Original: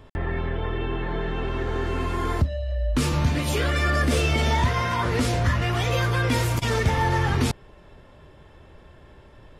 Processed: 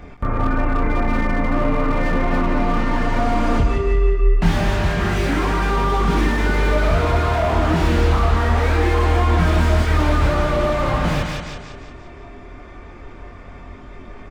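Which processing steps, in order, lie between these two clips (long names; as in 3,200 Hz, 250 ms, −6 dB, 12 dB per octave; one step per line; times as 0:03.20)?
parametric band 2,900 Hz +5 dB 2.6 octaves
in parallel at −2.5 dB: compressor whose output falls as the input rises −27 dBFS, ratio −1
on the sum: multi-voice chorus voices 2, 0.21 Hz, delay 17 ms, depth 2.2 ms
change of speed 0.671×
on a send: repeating echo 176 ms, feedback 47%, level −7 dB
on the sum: slew-rate limiting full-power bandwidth 60 Hz
level +5 dB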